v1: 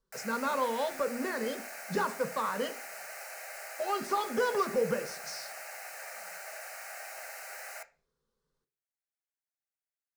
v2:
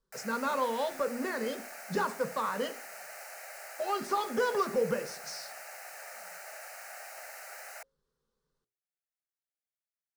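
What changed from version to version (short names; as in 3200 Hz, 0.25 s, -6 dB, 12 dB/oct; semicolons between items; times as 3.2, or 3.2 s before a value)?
background: send off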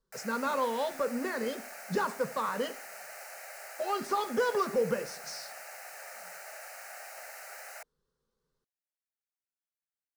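master: remove notches 60/120/180/240/300/360/420/480/540 Hz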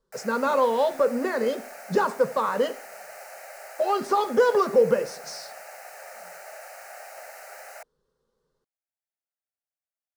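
speech +3.5 dB; master: add bell 570 Hz +7 dB 1.7 oct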